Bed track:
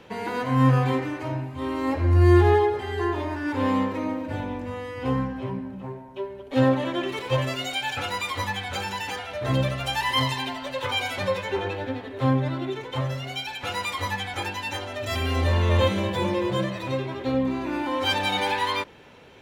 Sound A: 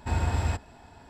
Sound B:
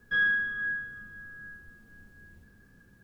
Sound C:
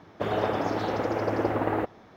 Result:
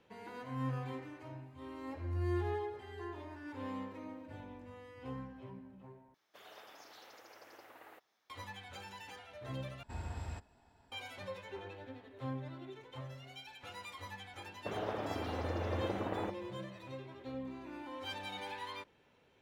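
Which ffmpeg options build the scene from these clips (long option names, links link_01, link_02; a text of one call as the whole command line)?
ffmpeg -i bed.wav -i cue0.wav -i cue1.wav -i cue2.wav -filter_complex "[3:a]asplit=2[link_01][link_02];[0:a]volume=-19dB[link_03];[link_01]aderivative[link_04];[link_03]asplit=3[link_05][link_06][link_07];[link_05]atrim=end=6.144[link_08];[link_04]atrim=end=2.16,asetpts=PTS-STARTPTS,volume=-9.5dB[link_09];[link_06]atrim=start=8.296:end=9.834[link_10];[1:a]atrim=end=1.09,asetpts=PTS-STARTPTS,volume=-16dB[link_11];[link_07]atrim=start=10.916[link_12];[link_02]atrim=end=2.16,asetpts=PTS-STARTPTS,volume=-12dB,afade=type=in:duration=0.004:curve=hsin,afade=type=out:start_time=2.156:duration=0.004:curve=hsin,adelay=14450[link_13];[link_08][link_09]acrossfade=duration=0.004:curve1=hsin:curve2=hsin[link_14];[link_14][link_10]acrossfade=duration=0.004:curve1=hsin:curve2=hsin[link_15];[link_15][link_11]acrossfade=duration=0.004:curve1=hsin:curve2=hsin[link_16];[link_16][link_12]acrossfade=duration=0.004:curve1=hsin:curve2=hsin[link_17];[link_17][link_13]amix=inputs=2:normalize=0" out.wav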